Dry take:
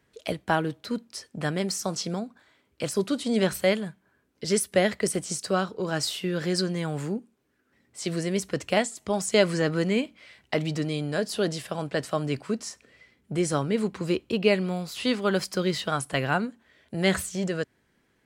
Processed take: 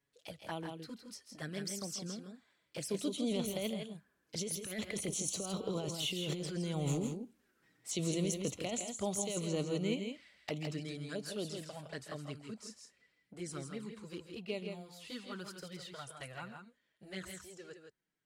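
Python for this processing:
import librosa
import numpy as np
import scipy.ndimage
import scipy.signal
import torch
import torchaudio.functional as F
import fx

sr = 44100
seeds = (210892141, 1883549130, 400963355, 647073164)

p1 = fx.doppler_pass(x, sr, speed_mps=7, closest_m=6.0, pass_at_s=6.28)
p2 = fx.high_shelf(p1, sr, hz=2600.0, db=6.0)
p3 = fx.over_compress(p2, sr, threshold_db=-34.0, ratio=-1.0)
p4 = fx.env_flanger(p3, sr, rest_ms=7.2, full_db=-33.5)
p5 = p4 + fx.echo_multitap(p4, sr, ms=(138, 163), db=(-13.0, -6.5), dry=0)
y = p5 * librosa.db_to_amplitude(-1.0)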